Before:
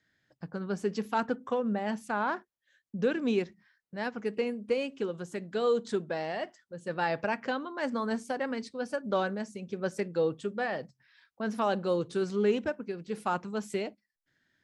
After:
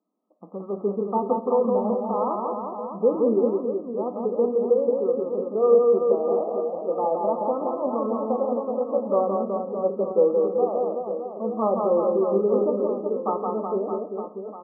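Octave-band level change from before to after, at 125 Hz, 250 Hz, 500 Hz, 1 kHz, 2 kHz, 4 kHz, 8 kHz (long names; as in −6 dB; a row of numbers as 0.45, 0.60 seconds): can't be measured, +5.5 dB, +11.0 dB, +7.0 dB, below −40 dB, below −40 dB, below −30 dB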